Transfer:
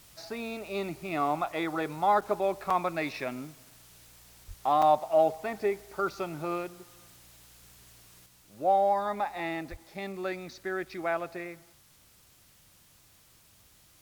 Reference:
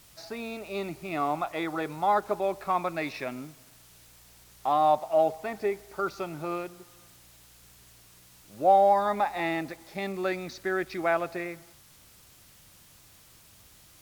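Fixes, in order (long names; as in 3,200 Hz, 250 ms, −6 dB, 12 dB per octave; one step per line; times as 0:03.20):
high-pass at the plosives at 0:04.47/0:09.70
repair the gap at 0:02.21/0:02.70/0:04.82, 4.7 ms
level 0 dB, from 0:08.26 +4.5 dB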